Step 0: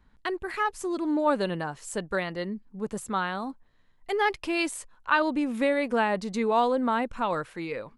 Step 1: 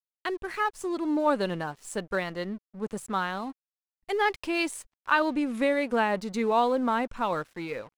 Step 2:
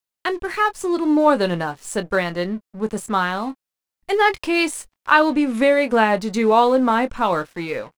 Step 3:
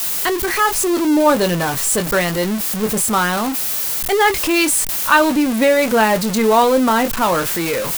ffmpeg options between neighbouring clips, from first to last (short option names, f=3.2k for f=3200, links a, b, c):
-af "aeval=exprs='sgn(val(0))*max(abs(val(0))-0.00355,0)':c=same"
-filter_complex "[0:a]asplit=2[a][b];[b]adelay=23,volume=-11.5dB[c];[a][c]amix=inputs=2:normalize=0,volume=8.5dB"
-af "aeval=exprs='val(0)+0.5*0.112*sgn(val(0))':c=same,crystalizer=i=1:c=0"